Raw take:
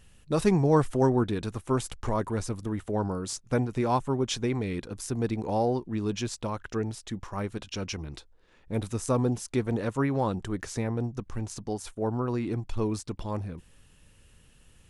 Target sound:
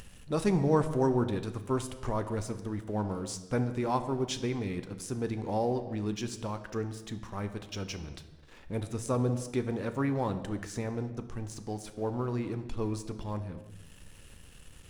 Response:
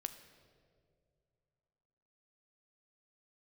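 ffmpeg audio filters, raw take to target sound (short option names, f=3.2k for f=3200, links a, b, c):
-filter_complex "[0:a]acompressor=mode=upward:threshold=-33dB:ratio=2.5,aeval=exprs='sgn(val(0))*max(abs(val(0))-0.00237,0)':c=same[a];[1:a]atrim=start_sample=2205,afade=t=out:st=0.44:d=0.01,atrim=end_sample=19845,asetrate=48510,aresample=44100[b];[a][b]afir=irnorm=-1:irlink=0"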